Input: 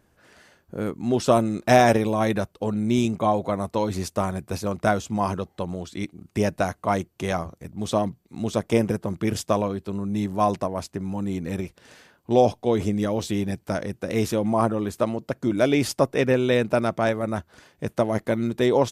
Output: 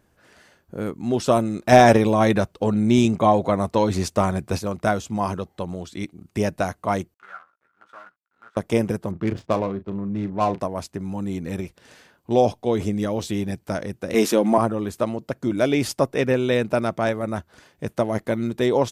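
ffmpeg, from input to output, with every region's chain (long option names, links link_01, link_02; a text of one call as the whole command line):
ffmpeg -i in.wav -filter_complex "[0:a]asettb=1/sr,asplit=3[link_01][link_02][link_03];[link_01]atrim=end=1.724[link_04];[link_02]atrim=start=1.72:end=4.59,asetpts=PTS-STARTPTS,afade=type=in:duration=0.004:curve=qsin,afade=type=out:start_time=2.866:duration=0.004:curve=qsin,equalizer=frequency=12000:width=1.4:gain=-6.5,acontrast=22[link_05];[link_03]atrim=start=4.586[link_06];[link_04][link_05]acrossfade=duration=0.004:curve1=hsin:curve2=qsin[link_07];[link_07][link_06]acrossfade=duration=0.004:curve1=qsin:curve2=hsin,asettb=1/sr,asplit=3[link_08][link_09][link_10];[link_08]atrim=end=7.144[link_11];[link_09]atrim=start=7.14:end=8.57,asetpts=PTS-STARTPTS,afade=type=in:duration=0.004:curve=qsin,afade=type=out:start_time=1.426:duration=0.004:curve=qsin,acrusher=bits=5:dc=4:mix=0:aa=0.000001,bandpass=frequency=1400:width_type=q:width=13,asplit=2[link_12][link_13];[link_13]adelay=16,volume=-6.5dB[link_14];[link_12][link_14]amix=inputs=2:normalize=0,atrim=end_sample=63063[link_15];[link_10]atrim=start=8.566[link_16];[link_11][link_15]acrossfade=duration=0.004:curve1=hsin:curve2=qsin[link_17];[link_17][link_16]acrossfade=duration=0.004:curve1=qsin:curve2=hsin,asettb=1/sr,asplit=3[link_18][link_19][link_20];[link_18]atrim=end=9.114[link_21];[link_19]atrim=start=9.11:end=10.6,asetpts=PTS-STARTPTS,afade=type=in:duration=0.004:curve=qsin,afade=type=out:start_time=1.486:duration=0.004:curve=qsin,adynamicsmooth=sensitivity=2.5:basefreq=920,asplit=2[link_22][link_23];[link_23]adelay=36,volume=-12dB[link_24];[link_22][link_24]amix=inputs=2:normalize=0,atrim=end_sample=65709[link_25];[link_20]atrim=start=10.596[link_26];[link_21][link_25]acrossfade=duration=0.004:curve1=hsin:curve2=qsin[link_27];[link_27][link_26]acrossfade=duration=0.004:curve1=qsin:curve2=hsin,asettb=1/sr,asplit=3[link_28][link_29][link_30];[link_28]atrim=end=14.144[link_31];[link_29]atrim=start=14.14:end=14.58,asetpts=PTS-STARTPTS,afade=type=in:duration=0.004:curve=qsin,afade=type=out:start_time=0.436:duration=0.004:curve=qsin,highpass=frequency=210:width=0.5412,highpass=frequency=210:width=1.3066,acontrast=63[link_32];[link_30]atrim=start=14.576[link_33];[link_31][link_32]acrossfade=duration=0.004:curve1=hsin:curve2=qsin[link_34];[link_34][link_33]acrossfade=duration=0.004:curve1=qsin:curve2=hsin" out.wav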